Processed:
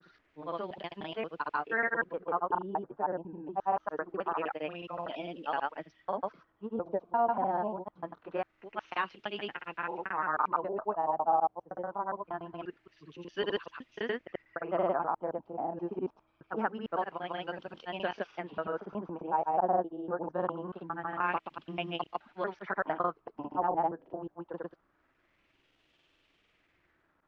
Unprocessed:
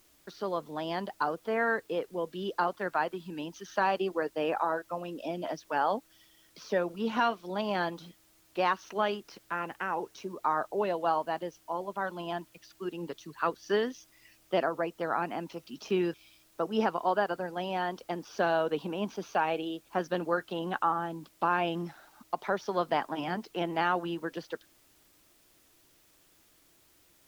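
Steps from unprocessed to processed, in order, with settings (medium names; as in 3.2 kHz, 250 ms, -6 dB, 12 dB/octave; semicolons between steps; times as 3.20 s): slices played last to first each 131 ms, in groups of 3; granulator 100 ms, grains 20 per s, pitch spread up and down by 0 st; LFO low-pass sine 0.24 Hz 780–3000 Hz; trim -4 dB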